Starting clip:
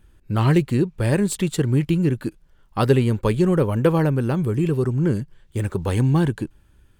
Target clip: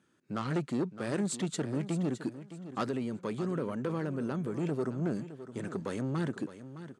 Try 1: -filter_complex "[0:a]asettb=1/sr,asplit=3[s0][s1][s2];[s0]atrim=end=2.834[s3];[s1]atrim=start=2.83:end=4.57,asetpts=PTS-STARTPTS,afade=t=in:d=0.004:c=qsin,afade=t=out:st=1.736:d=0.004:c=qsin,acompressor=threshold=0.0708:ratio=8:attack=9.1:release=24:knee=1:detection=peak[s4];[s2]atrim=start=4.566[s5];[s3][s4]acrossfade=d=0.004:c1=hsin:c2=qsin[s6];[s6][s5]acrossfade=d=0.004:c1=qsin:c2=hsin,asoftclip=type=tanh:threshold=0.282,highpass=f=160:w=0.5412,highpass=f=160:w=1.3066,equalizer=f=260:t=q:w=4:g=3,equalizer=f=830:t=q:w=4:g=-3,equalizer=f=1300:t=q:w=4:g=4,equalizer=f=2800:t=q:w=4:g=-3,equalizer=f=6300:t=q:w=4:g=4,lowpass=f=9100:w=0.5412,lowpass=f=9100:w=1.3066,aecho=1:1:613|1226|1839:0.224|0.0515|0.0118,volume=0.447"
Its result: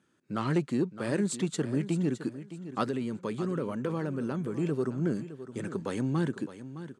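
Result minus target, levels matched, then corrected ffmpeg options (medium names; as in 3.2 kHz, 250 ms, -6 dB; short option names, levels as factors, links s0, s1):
saturation: distortion -9 dB
-filter_complex "[0:a]asettb=1/sr,asplit=3[s0][s1][s2];[s0]atrim=end=2.834[s3];[s1]atrim=start=2.83:end=4.57,asetpts=PTS-STARTPTS,afade=t=in:d=0.004:c=qsin,afade=t=out:st=1.736:d=0.004:c=qsin,acompressor=threshold=0.0708:ratio=8:attack=9.1:release=24:knee=1:detection=peak[s4];[s2]atrim=start=4.566[s5];[s3][s4]acrossfade=d=0.004:c1=hsin:c2=qsin[s6];[s6][s5]acrossfade=d=0.004:c1=qsin:c2=hsin,asoftclip=type=tanh:threshold=0.112,highpass=f=160:w=0.5412,highpass=f=160:w=1.3066,equalizer=f=260:t=q:w=4:g=3,equalizer=f=830:t=q:w=4:g=-3,equalizer=f=1300:t=q:w=4:g=4,equalizer=f=2800:t=q:w=4:g=-3,equalizer=f=6300:t=q:w=4:g=4,lowpass=f=9100:w=0.5412,lowpass=f=9100:w=1.3066,aecho=1:1:613|1226|1839:0.224|0.0515|0.0118,volume=0.447"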